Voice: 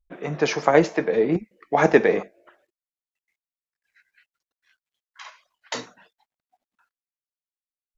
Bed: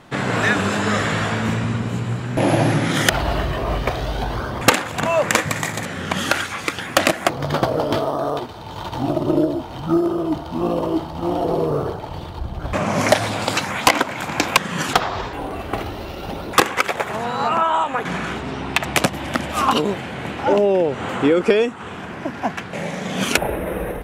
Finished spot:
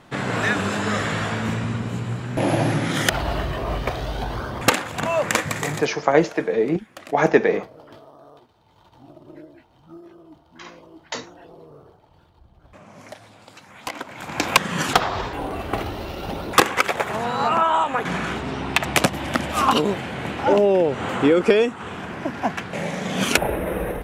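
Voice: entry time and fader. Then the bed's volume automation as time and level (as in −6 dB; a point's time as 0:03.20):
5.40 s, 0.0 dB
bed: 0:05.76 −3.5 dB
0:06.03 −25 dB
0:13.56 −25 dB
0:14.53 −0.5 dB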